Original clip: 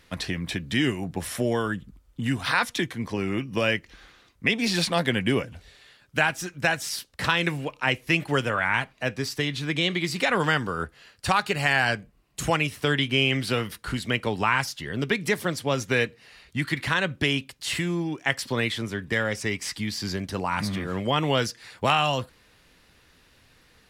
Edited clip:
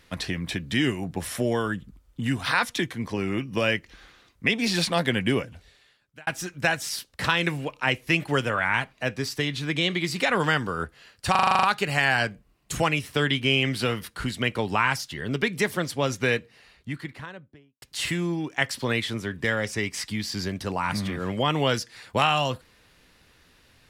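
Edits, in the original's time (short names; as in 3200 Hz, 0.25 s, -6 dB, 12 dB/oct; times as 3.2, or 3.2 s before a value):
5.3–6.27 fade out
11.31 stutter 0.04 s, 9 plays
15.86–17.5 studio fade out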